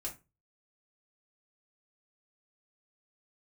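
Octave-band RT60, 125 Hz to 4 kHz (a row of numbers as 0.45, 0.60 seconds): 0.45, 0.30, 0.30, 0.25, 0.25, 0.20 seconds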